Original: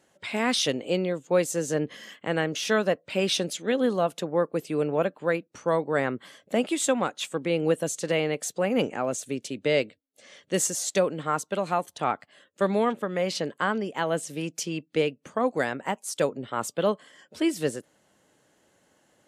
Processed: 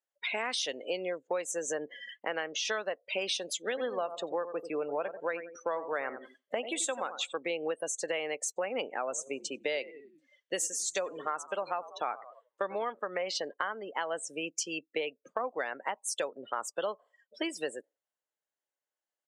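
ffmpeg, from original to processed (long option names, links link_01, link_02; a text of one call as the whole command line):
ffmpeg -i in.wav -filter_complex "[0:a]asplit=3[link_01][link_02][link_03];[link_01]afade=type=out:start_time=3.73:duration=0.02[link_04];[link_02]asplit=2[link_05][link_06];[link_06]adelay=89,lowpass=frequency=4100:poles=1,volume=-11.5dB,asplit=2[link_07][link_08];[link_08]adelay=89,lowpass=frequency=4100:poles=1,volume=0.34,asplit=2[link_09][link_10];[link_10]adelay=89,lowpass=frequency=4100:poles=1,volume=0.34,asplit=2[link_11][link_12];[link_12]adelay=89,lowpass=frequency=4100:poles=1,volume=0.34[link_13];[link_05][link_07][link_09][link_11][link_13]amix=inputs=5:normalize=0,afade=type=in:start_time=3.73:duration=0.02,afade=type=out:start_time=7.31:duration=0.02[link_14];[link_03]afade=type=in:start_time=7.31:duration=0.02[link_15];[link_04][link_14][link_15]amix=inputs=3:normalize=0,asettb=1/sr,asplit=3[link_16][link_17][link_18];[link_16]atrim=end=8.974[link_19];[link_17]atrim=start=8.97:end=12.84,asetpts=PTS-STARTPTS,afade=type=in:duration=0.004:curve=qsin,afade=type=out:start_time=3.866:duration=0.004:curve=qsin,asplit=7[link_20][link_21][link_22][link_23][link_24][link_25][link_26];[link_21]adelay=94,afreqshift=-58,volume=-17dB[link_27];[link_22]adelay=188,afreqshift=-116,volume=-21.4dB[link_28];[link_23]adelay=282,afreqshift=-174,volume=-25.9dB[link_29];[link_24]adelay=376,afreqshift=-232,volume=-30.3dB[link_30];[link_25]adelay=470,afreqshift=-290,volume=-34.7dB[link_31];[link_26]adelay=564,afreqshift=-348,volume=-39.2dB[link_32];[link_20][link_27][link_28][link_29][link_30][link_31][link_32]amix=inputs=7:normalize=0,atrim=end_sample=170667[link_33];[link_18]atrim=start=12.836[link_34];[link_19][link_33]acrossfade=duration=0.004:curve1=hsin:curve2=qsin[link_35];[link_35][link_34]acrossfade=duration=0.004:curve1=qsin:curve2=hsin,afftdn=noise_reduction=34:noise_floor=-38,highpass=590,acompressor=threshold=-35dB:ratio=6,volume=4.5dB" out.wav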